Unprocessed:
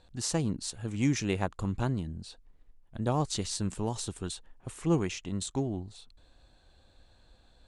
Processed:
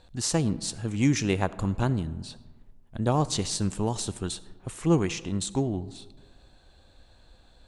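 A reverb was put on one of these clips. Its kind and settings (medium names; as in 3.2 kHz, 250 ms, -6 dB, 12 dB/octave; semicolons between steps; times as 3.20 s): algorithmic reverb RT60 1.5 s, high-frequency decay 0.45×, pre-delay 25 ms, DRR 17.5 dB; trim +4.5 dB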